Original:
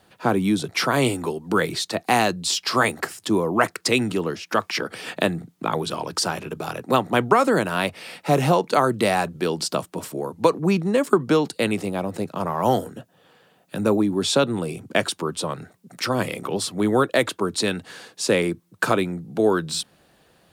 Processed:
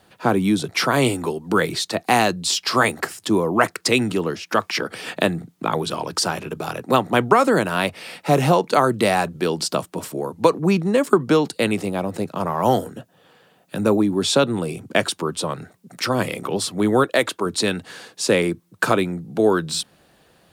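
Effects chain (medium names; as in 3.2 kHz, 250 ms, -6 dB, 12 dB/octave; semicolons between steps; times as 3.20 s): 17.04–17.46 s: bass shelf 200 Hz -8.5 dB; trim +2 dB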